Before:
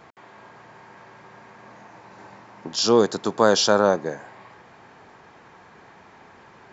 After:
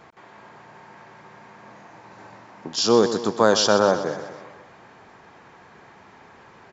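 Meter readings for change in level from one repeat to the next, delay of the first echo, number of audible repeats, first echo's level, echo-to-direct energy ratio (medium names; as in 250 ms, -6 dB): -5.5 dB, 125 ms, 5, -11.5 dB, -10.0 dB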